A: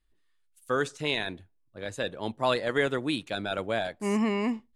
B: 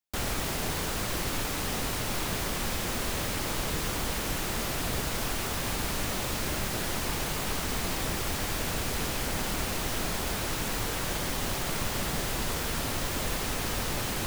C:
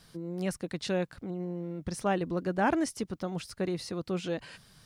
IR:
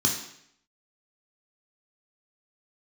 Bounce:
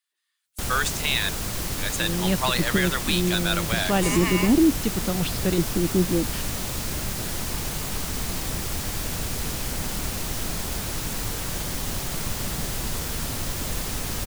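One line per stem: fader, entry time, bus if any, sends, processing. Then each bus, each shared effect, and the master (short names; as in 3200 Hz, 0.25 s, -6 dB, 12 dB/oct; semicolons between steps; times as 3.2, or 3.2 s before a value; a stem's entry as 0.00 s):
0.0 dB, 0.00 s, bus A, no send, HPF 1200 Hz 12 dB/oct
-2.0 dB, 0.45 s, no bus, no send, dry
-4.5 dB, 1.85 s, bus A, no send, LFO low-pass square 0.67 Hz 320–3500 Hz
bus A: 0.0 dB, AGC gain up to 9.5 dB; limiter -13.5 dBFS, peak gain reduction 6.5 dB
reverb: off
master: tone controls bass +6 dB, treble +6 dB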